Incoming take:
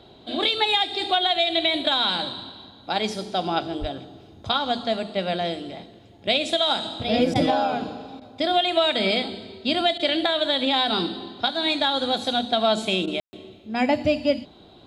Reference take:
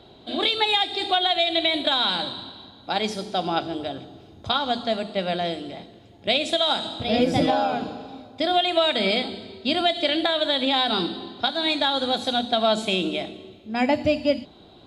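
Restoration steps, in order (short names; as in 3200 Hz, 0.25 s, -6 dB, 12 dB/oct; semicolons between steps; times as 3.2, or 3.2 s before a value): 3.8–3.92 HPF 140 Hz 24 dB/oct; room tone fill 13.2–13.33; interpolate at 7.34/8.2/9.98/13.06, 13 ms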